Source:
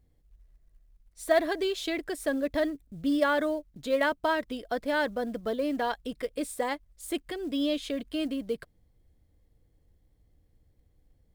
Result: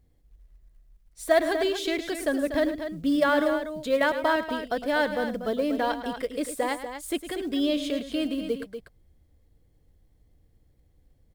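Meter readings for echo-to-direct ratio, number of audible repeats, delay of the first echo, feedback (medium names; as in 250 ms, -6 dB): -7.5 dB, 2, 107 ms, no regular repeats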